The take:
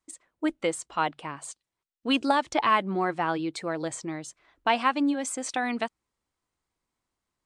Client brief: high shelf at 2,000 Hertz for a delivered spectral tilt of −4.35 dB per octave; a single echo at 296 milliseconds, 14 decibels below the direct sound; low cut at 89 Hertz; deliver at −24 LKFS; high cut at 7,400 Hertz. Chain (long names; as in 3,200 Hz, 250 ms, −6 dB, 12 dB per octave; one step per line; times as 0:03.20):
high-pass filter 89 Hz
low-pass filter 7,400 Hz
high-shelf EQ 2,000 Hz −3 dB
single-tap delay 296 ms −14 dB
level +4.5 dB